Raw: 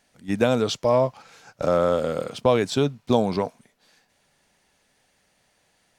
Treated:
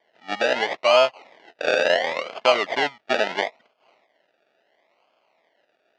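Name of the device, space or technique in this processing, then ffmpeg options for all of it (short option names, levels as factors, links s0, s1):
circuit-bent sampling toy: -af "bandreject=f=480:w=12,acrusher=samples=33:mix=1:aa=0.000001:lfo=1:lforange=19.8:lforate=0.73,highpass=550,equalizer=f=650:t=q:w=4:g=7,equalizer=f=2000:t=q:w=4:g=8,equalizer=f=3000:t=q:w=4:g=5,lowpass=f=5000:w=0.5412,lowpass=f=5000:w=1.3066,volume=1.19"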